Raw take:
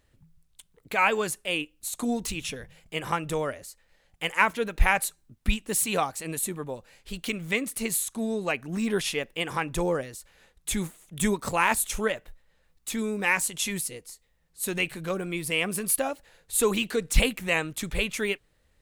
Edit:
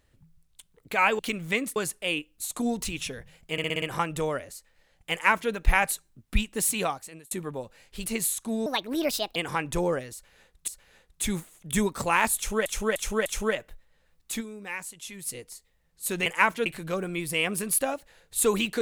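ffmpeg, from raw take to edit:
-filter_complex "[0:a]asplit=20[s0][s1][s2][s3][s4][s5][s6][s7][s8][s9][s10][s11][s12][s13][s14][s15][s16][s17][s18][s19];[s0]atrim=end=1.192[s20];[s1]atrim=start=7.188:end=7.762[s21];[s2]atrim=start=1.188:end=3.012[s22];[s3]atrim=start=2.948:end=3.012[s23];[s4]atrim=start=2.948:end=3.012[s24];[s5]atrim=start=2.948:end=3.012[s25];[s6]atrim=start=2.948:end=3.012[s26];[s7]atrim=start=2.948:end=6.44,asetpts=PTS-STARTPTS,afade=t=out:st=2.912:d=0.58[s27];[s8]atrim=start=6.44:end=7.192,asetpts=PTS-STARTPTS,afade=t=in:d=0.004:c=hsin[s28];[s9]atrim=start=7.758:end=8.364[s29];[s10]atrim=start=8.36:end=9.38,asetpts=PTS-STARTPTS,asetrate=64386,aresample=44100[s30];[s11]atrim=start=9.376:end=10.702[s31];[s12]atrim=start=10.148:end=12.132[s32];[s13]atrim=start=11.828:end=12.132[s33];[s14]atrim=start=11.828:end=12.132[s34];[s15]atrim=start=11.828:end=13.1,asetpts=PTS-STARTPTS,afade=t=out:st=1.142:d=0.13:c=exp:silence=0.266073[s35];[s16]atrim=start=13.1:end=13.71,asetpts=PTS-STARTPTS,volume=0.266[s36];[s17]atrim=start=13.71:end=14.832,asetpts=PTS-STARTPTS,afade=t=in:d=0.13:c=exp:silence=0.266073[s37];[s18]atrim=start=4.248:end=4.652[s38];[s19]atrim=start=14.828[s39];[s20][s21]acrossfade=d=0.004:c1=hsin:c2=hsin[s40];[s40][s22]acrossfade=d=0.004:c1=hsin:c2=hsin[s41];[s41][s23]acrossfade=d=0.004:c1=hsin:c2=hsin[s42];[s42][s24]acrossfade=d=0.004:c1=hsin:c2=hsin[s43];[s43][s25]acrossfade=d=0.004:c1=hsin:c2=hsin[s44];[s44][s26]acrossfade=d=0.004:c1=hsin:c2=hsin[s45];[s27][s28]concat=n=2:v=0:a=1[s46];[s45][s46]acrossfade=d=0.004:c1=hsin:c2=hsin[s47];[s47][s29]acrossfade=d=0.004:c1=hsin:c2=hsin[s48];[s48][s30]acrossfade=d=0.004:c1=hsin:c2=hsin[s49];[s49][s31]acrossfade=d=0.004:c1=hsin:c2=hsin[s50];[s50][s32]acrossfade=d=0.004:c1=hsin:c2=hsin[s51];[s51][s33]acrossfade=d=0.004:c1=hsin:c2=hsin[s52];[s52][s34]acrossfade=d=0.004:c1=hsin:c2=hsin[s53];[s35][s36][s37]concat=n=3:v=0:a=1[s54];[s53][s54]acrossfade=d=0.004:c1=hsin:c2=hsin[s55];[s55][s38]acrossfade=d=0.004:c1=hsin:c2=hsin[s56];[s56][s39]acrossfade=d=0.004:c1=hsin:c2=hsin"

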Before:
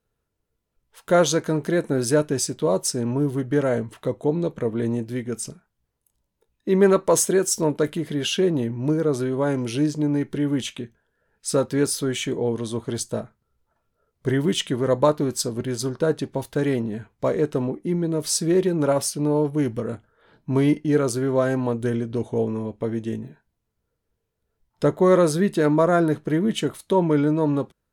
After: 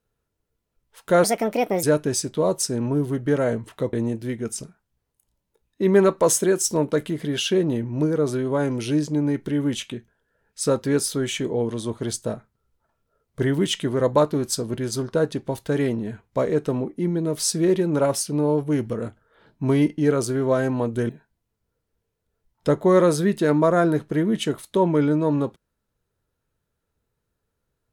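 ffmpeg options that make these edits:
-filter_complex "[0:a]asplit=5[s0][s1][s2][s3][s4];[s0]atrim=end=1.244[s5];[s1]atrim=start=1.24:end=2.08,asetpts=PTS-STARTPTS,asetrate=62622,aresample=44100,atrim=end_sample=26087,asetpts=PTS-STARTPTS[s6];[s2]atrim=start=2.076:end=4.182[s7];[s3]atrim=start=4.798:end=21.962[s8];[s4]atrim=start=23.248[s9];[s5][s6]acrossfade=d=0.004:c1=hsin:c2=hsin[s10];[s10][s7]acrossfade=d=0.004:c1=hsin:c2=hsin[s11];[s11][s8]acrossfade=d=0.004:c1=hsin:c2=hsin[s12];[s12][s9]acrossfade=d=0.004:c1=hsin:c2=hsin"

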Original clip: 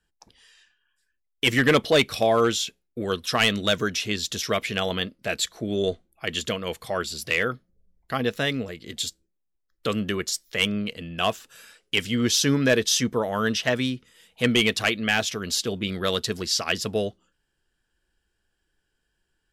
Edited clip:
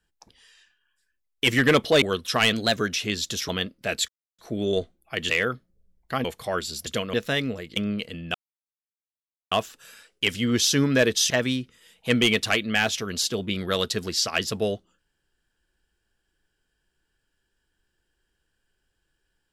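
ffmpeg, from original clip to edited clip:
-filter_complex "[0:a]asplit=13[s0][s1][s2][s3][s4][s5][s6][s7][s8][s9][s10][s11][s12];[s0]atrim=end=2.022[s13];[s1]atrim=start=3.008:end=3.524[s14];[s2]atrim=start=3.52:end=3.78,asetpts=PTS-STARTPTS,asetrate=48951,aresample=44100[s15];[s3]atrim=start=3.776:end=4.502[s16];[s4]atrim=start=4.888:end=5.49,asetpts=PTS-STARTPTS,afade=t=out:st=0.598:d=0.004:c=hsin,apad=pad_dur=0.3[s17];[s5]atrim=start=5.49:end=6.402,asetpts=PTS-STARTPTS,afade=t=in:d=0.004:c=hsin[s18];[s6]atrim=start=7.288:end=8.242[s19];[s7]atrim=start=6.668:end=7.292[s20];[s8]atrim=start=6.398:end=6.672[s21];[s9]atrim=start=8.238:end=8.872[s22];[s10]atrim=start=10.638:end=11.22,asetpts=PTS-STARTPTS,afade=t=out:st=0.578:d=0.004:c=hsin,apad=pad_dur=1.17[s23];[s11]atrim=start=11.22:end=13.012,asetpts=PTS-STARTPTS,afade=t=in:d=0.004:c=hsin[s24];[s12]atrim=start=13.638[s25];[s13][s14]acrossfade=d=0.004:c1=hsin:c2=hsin[s26];[s26][s15]acrossfade=d=0.004:c1=hsin:c2=hsin[s27];[s27][s16]acrossfade=d=0.004:c1=hsin:c2=hsin[s28];[s17][s18]concat=n=2:v=0:a=1[s29];[s28][s29]acrossfade=d=0.004:c1=hsin:c2=hsin[s30];[s30][s19]acrossfade=d=0.004:c1=hsin:c2=hsin[s31];[s31][s20]acrossfade=d=0.004:c1=hsin:c2=hsin[s32];[s32][s21]acrossfade=d=0.004:c1=hsin:c2=hsin[s33];[s33][s22]acrossfade=d=0.004:c1=hsin:c2=hsin[s34];[s23][s24]concat=n=2:v=0:a=1[s35];[s34][s35]acrossfade=d=0.004:c1=hsin:c2=hsin[s36];[s36][s25]acrossfade=d=0.004:c1=hsin:c2=hsin"

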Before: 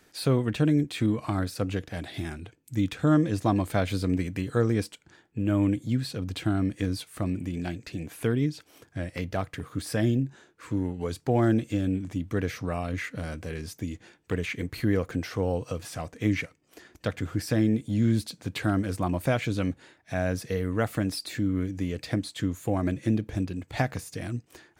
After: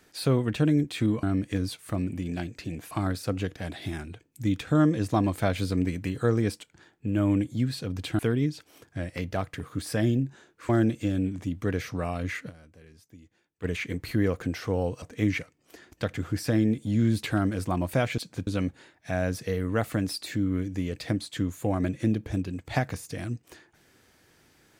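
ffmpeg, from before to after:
-filter_complex "[0:a]asplit=11[s0][s1][s2][s3][s4][s5][s6][s7][s8][s9][s10];[s0]atrim=end=1.232[s11];[s1]atrim=start=6.508:end=8.192[s12];[s2]atrim=start=1.228:end=6.512[s13];[s3]atrim=start=8.188:end=10.692[s14];[s4]atrim=start=11.378:end=13.31,asetpts=PTS-STARTPTS,afade=t=out:st=1.792:d=0.14:c=exp:silence=0.133352[s15];[s5]atrim=start=13.31:end=14.2,asetpts=PTS-STARTPTS,volume=0.133[s16];[s6]atrim=start=14.2:end=15.712,asetpts=PTS-STARTPTS,afade=t=in:d=0.14:c=exp:silence=0.133352[s17];[s7]atrim=start=16.048:end=18.262[s18];[s8]atrim=start=18.548:end=19.502[s19];[s9]atrim=start=18.258:end=18.552[s20];[s10]atrim=start=19.498[s21];[s11][s12]acrossfade=d=0.004:c1=hsin:c2=hsin[s22];[s22][s13]acrossfade=d=0.004:c1=hsin:c2=hsin[s23];[s23][s14]acrossfade=d=0.004:c1=hsin:c2=hsin[s24];[s15][s16][s17]concat=n=3:v=0:a=1[s25];[s24][s25]acrossfade=d=0.004:c1=hsin:c2=hsin[s26];[s26][s18]acrossfade=d=0.004:c1=hsin:c2=hsin[s27];[s27][s19]acrossfade=d=0.004:c1=hsin:c2=hsin[s28];[s28][s20]acrossfade=d=0.004:c1=hsin:c2=hsin[s29];[s29][s21]acrossfade=d=0.004:c1=hsin:c2=hsin"

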